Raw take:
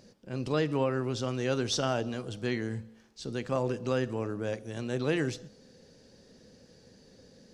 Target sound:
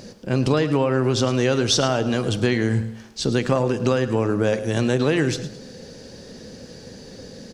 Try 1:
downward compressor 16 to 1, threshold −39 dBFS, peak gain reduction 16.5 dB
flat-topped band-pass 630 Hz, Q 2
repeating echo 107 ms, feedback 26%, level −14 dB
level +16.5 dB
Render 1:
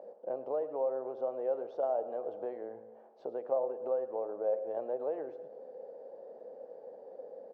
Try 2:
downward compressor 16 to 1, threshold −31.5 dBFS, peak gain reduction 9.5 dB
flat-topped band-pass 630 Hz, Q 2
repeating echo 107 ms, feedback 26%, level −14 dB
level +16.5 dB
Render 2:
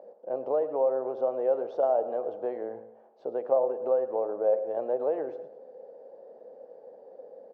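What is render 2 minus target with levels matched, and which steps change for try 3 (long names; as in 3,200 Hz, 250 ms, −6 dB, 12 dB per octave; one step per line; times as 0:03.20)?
500 Hz band +4.0 dB
remove: flat-topped band-pass 630 Hz, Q 2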